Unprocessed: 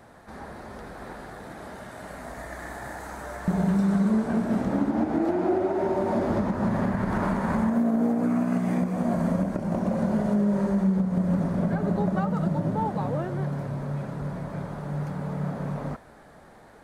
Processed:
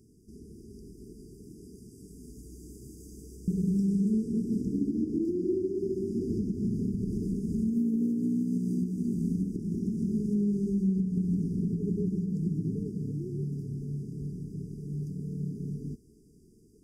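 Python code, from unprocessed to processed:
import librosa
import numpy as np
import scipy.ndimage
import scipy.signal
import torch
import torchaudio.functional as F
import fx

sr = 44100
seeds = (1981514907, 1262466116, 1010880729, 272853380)

y = fx.brickwall_bandstop(x, sr, low_hz=450.0, high_hz=4700.0)
y = y * 10.0 ** (-4.0 / 20.0)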